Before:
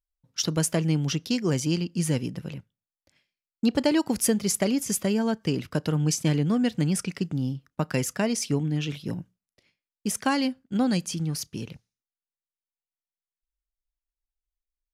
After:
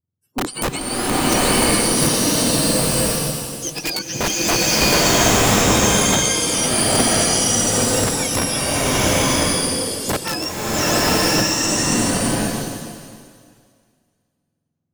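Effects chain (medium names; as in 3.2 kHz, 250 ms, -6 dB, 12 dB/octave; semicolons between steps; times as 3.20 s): spectrum inverted on a logarithmic axis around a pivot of 1.2 kHz; integer overflow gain 17.5 dB; swelling reverb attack 1020 ms, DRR -9.5 dB; trim +2 dB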